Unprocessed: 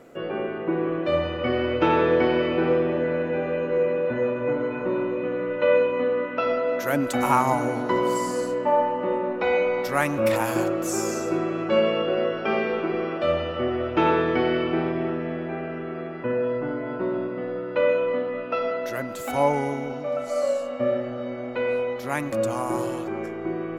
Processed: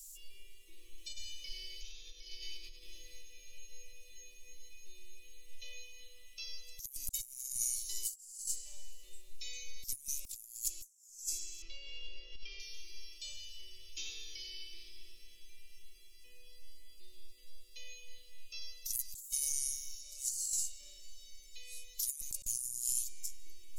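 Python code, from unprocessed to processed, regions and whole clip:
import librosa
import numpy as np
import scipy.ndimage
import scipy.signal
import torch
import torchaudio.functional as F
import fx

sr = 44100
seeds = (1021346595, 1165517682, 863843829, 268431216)

y = fx.chain(x, sr, fx.over_compress(threshold_db=-23.0, ratio=-0.5),
    fx.echo_single(ms=103, db=-8.5), at=(0.98, 3.21))
y = fx.chain(y, sr, fx.air_absorb(metres=290.0),
    fx.env_flatten(amount_pct=70), at=(11.62, 12.6))
y = scipy.signal.sosfilt(scipy.signal.cheby2(4, 70, [100.0, 1600.0], 'bandstop', fs=sr, output='sos'), y)
y = fx.peak_eq(y, sr, hz=380.0, db=4.5, octaves=1.2)
y = fx.over_compress(y, sr, threshold_db=-52.0, ratio=-0.5)
y = y * 10.0 ** (14.5 / 20.0)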